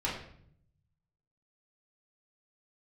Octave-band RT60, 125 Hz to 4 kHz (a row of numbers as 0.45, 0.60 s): 1.5, 0.95, 0.70, 0.55, 0.55, 0.50 s